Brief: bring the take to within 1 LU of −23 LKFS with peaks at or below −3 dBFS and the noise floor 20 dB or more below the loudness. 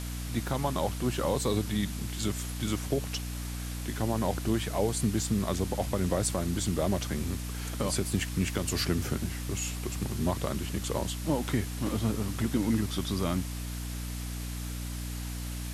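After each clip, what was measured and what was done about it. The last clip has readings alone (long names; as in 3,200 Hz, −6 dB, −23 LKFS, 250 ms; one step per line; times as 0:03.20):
mains hum 60 Hz; hum harmonics up to 300 Hz; level of the hum −34 dBFS; background noise floor −36 dBFS; target noise floor −52 dBFS; integrated loudness −31.5 LKFS; sample peak −14.0 dBFS; target loudness −23.0 LKFS
→ hum removal 60 Hz, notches 5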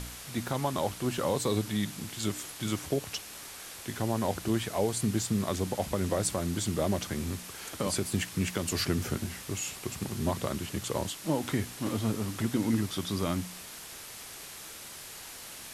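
mains hum none found; background noise floor −45 dBFS; target noise floor −53 dBFS
→ noise reduction from a noise print 8 dB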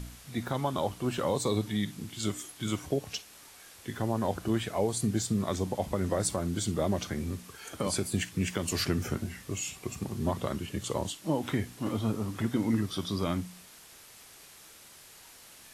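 background noise floor −53 dBFS; integrated loudness −32.0 LKFS; sample peak −16.0 dBFS; target loudness −23.0 LKFS
→ level +9 dB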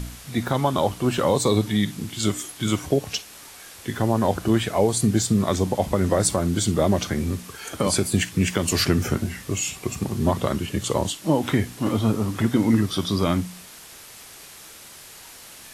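integrated loudness −23.0 LKFS; sample peak −7.0 dBFS; background noise floor −44 dBFS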